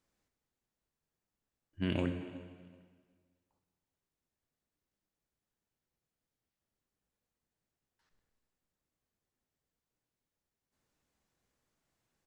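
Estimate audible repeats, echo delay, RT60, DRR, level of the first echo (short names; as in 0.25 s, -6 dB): 2, 0.375 s, 1.7 s, 6.5 dB, -20.5 dB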